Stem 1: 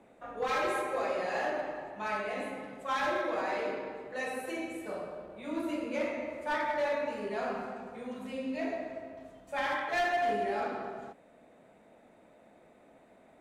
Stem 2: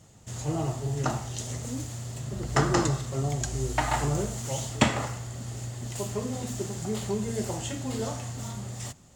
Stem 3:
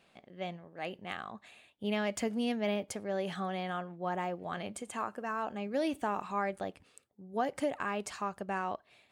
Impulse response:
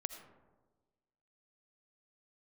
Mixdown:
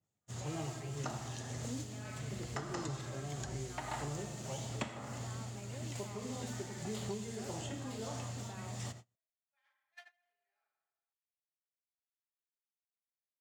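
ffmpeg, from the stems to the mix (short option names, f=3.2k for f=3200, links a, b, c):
-filter_complex "[0:a]highpass=1.4k,volume=-13.5dB[a];[1:a]highpass=83,tremolo=f=1.7:d=0.56,adynamicequalizer=threshold=0.00316:dfrequency=2400:dqfactor=0.7:tfrequency=2400:tqfactor=0.7:attack=5:release=100:ratio=0.375:range=2.5:mode=boostabove:tftype=highshelf,volume=-2.5dB,asplit=2[b][c];[c]volume=-3.5dB[d];[2:a]alimiter=level_in=6.5dB:limit=-24dB:level=0:latency=1,volume=-6.5dB,volume=-12dB,asplit=2[e][f];[f]apad=whole_len=403679[g];[b][g]sidechaincompress=threshold=-56dB:ratio=8:attack=40:release=431[h];[3:a]atrim=start_sample=2205[i];[d][i]afir=irnorm=-1:irlink=0[j];[a][h][e][j]amix=inputs=4:normalize=0,agate=range=-32dB:threshold=-45dB:ratio=16:detection=peak,acrossover=split=1800|5900[k][l][m];[k]acompressor=threshold=-39dB:ratio=4[n];[l]acompressor=threshold=-52dB:ratio=4[o];[m]acompressor=threshold=-59dB:ratio=4[p];[n][o][p]amix=inputs=3:normalize=0"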